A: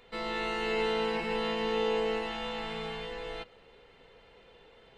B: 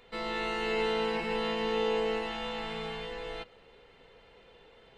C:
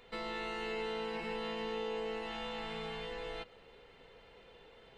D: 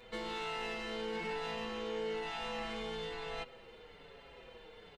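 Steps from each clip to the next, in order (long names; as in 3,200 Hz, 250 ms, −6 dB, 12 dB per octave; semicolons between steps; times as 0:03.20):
no processing that can be heard
downward compressor 2.5 to 1, threshold −38 dBFS, peak gain reduction 8.5 dB; level −1 dB
soft clipping −38 dBFS, distortion −13 dB; barber-pole flanger 5.8 ms −1.1 Hz; level +6.5 dB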